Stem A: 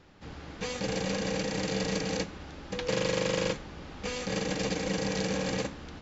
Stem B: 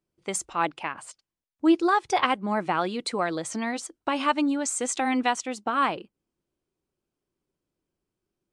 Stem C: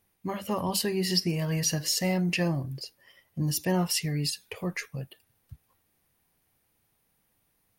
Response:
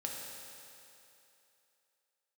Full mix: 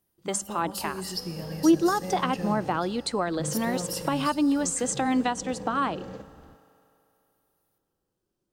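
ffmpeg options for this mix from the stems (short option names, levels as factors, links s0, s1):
-filter_complex "[0:a]lowpass=f=1000:p=1,adelay=550,volume=0.316,asplit=2[s0][s1];[s1]volume=0.422[s2];[1:a]volume=1.19,asplit=2[s3][s4];[s4]volume=0.075[s5];[2:a]crystalizer=i=0.5:c=0,volume=0.299,asplit=2[s6][s7];[s7]volume=0.501[s8];[3:a]atrim=start_sample=2205[s9];[s2][s5][s8]amix=inputs=3:normalize=0[s10];[s10][s9]afir=irnorm=-1:irlink=0[s11];[s0][s3][s6][s11]amix=inputs=4:normalize=0,equalizer=f=2300:t=o:w=0.42:g=-8,acrossover=split=360[s12][s13];[s13]acompressor=threshold=0.0501:ratio=2.5[s14];[s12][s14]amix=inputs=2:normalize=0"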